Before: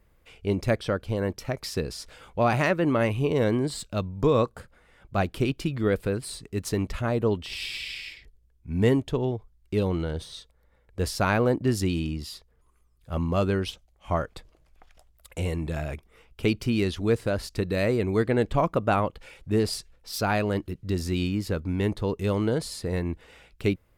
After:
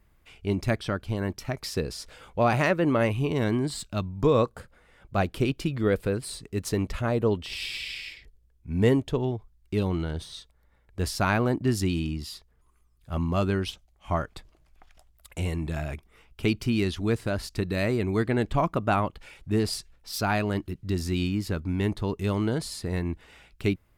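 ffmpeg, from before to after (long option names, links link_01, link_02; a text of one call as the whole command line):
ffmpeg -i in.wav -af "asetnsamples=nb_out_samples=441:pad=0,asendcmd='1.63 equalizer g 0.5;3.13 equalizer g -11;4.25 equalizer g 0.5;9.18 equalizer g -8',equalizer=frequency=500:width_type=o:width=0.34:gain=-10" out.wav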